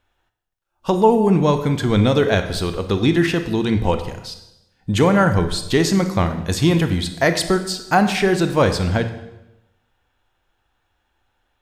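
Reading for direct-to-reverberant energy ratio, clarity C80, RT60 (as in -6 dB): 8.0 dB, 12.5 dB, 0.95 s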